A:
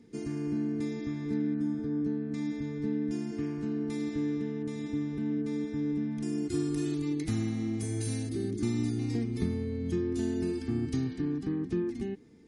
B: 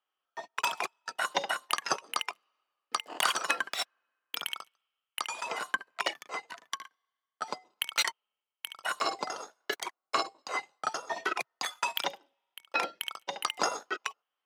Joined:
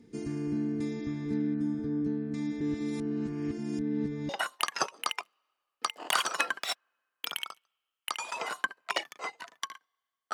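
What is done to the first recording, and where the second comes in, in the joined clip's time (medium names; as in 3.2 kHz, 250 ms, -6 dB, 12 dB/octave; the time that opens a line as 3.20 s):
A
2.61–4.29 s: reverse
4.29 s: go over to B from 1.39 s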